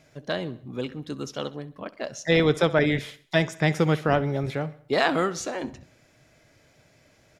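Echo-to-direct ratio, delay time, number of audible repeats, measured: -18.0 dB, 65 ms, 3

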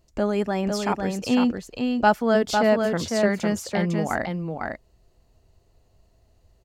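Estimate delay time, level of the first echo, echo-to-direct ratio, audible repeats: 502 ms, -4.5 dB, -4.5 dB, 1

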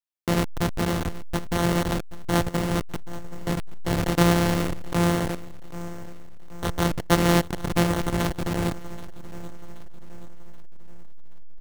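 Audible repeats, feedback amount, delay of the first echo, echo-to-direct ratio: 3, 47%, 778 ms, -16.5 dB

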